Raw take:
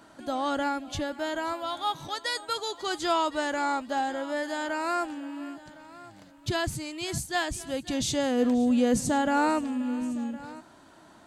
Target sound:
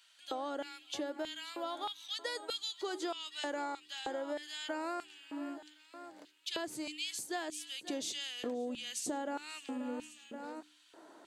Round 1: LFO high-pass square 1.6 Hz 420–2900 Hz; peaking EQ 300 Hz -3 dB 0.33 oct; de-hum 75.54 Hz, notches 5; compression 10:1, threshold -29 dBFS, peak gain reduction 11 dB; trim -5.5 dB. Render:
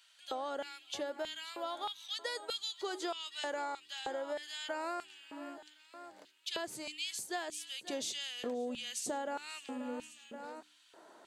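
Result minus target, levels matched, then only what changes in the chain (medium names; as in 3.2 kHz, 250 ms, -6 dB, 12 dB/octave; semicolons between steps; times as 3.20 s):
250 Hz band -3.5 dB
change: peaking EQ 300 Hz +6 dB 0.33 oct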